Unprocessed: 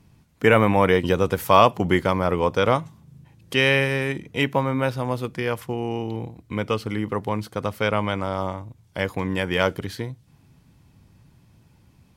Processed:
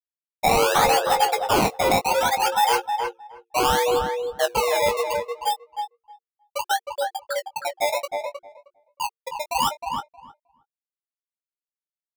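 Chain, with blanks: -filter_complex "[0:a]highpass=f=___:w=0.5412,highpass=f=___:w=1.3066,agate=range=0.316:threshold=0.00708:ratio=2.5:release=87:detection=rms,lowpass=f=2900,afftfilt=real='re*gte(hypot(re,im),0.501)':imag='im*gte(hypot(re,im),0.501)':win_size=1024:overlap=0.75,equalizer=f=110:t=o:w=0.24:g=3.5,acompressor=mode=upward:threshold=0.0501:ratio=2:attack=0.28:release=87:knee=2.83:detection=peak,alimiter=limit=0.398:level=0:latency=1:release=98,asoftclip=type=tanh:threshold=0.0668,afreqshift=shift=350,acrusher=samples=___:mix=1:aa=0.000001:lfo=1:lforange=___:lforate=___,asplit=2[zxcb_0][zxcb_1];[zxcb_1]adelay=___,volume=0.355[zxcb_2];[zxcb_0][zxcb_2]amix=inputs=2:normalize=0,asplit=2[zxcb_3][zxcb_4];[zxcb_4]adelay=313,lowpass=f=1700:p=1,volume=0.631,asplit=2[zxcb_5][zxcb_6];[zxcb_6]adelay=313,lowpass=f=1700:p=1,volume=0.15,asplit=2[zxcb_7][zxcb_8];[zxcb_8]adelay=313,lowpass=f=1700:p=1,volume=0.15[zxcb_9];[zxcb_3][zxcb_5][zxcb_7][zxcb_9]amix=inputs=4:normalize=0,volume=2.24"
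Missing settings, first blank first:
66, 66, 20, 20, 0.67, 19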